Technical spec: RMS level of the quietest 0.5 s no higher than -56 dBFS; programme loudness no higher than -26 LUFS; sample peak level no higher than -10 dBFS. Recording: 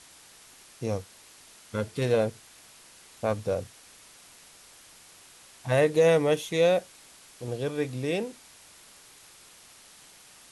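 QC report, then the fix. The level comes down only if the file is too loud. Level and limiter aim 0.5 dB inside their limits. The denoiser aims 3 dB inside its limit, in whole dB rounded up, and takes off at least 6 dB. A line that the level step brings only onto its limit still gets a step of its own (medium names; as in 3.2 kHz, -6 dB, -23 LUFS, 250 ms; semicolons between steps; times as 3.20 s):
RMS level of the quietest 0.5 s -53 dBFS: fail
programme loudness -27.5 LUFS: pass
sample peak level -11.0 dBFS: pass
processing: noise reduction 6 dB, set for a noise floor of -53 dBFS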